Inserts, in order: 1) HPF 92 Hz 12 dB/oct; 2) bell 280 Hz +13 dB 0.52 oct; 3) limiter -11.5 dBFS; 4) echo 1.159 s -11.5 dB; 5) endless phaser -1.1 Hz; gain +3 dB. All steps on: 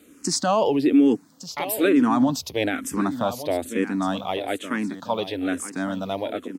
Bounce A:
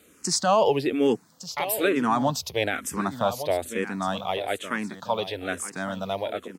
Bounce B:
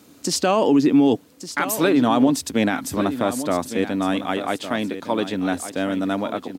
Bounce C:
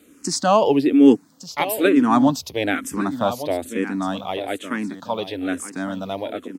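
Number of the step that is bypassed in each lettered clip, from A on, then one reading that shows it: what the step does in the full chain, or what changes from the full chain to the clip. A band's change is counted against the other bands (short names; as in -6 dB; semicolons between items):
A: 2, 250 Hz band -8.0 dB; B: 5, loudness change +2.5 LU; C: 3, crest factor change +4.0 dB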